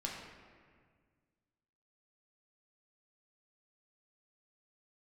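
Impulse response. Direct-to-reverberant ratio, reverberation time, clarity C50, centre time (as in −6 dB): −2.5 dB, 1.8 s, 2.0 dB, 69 ms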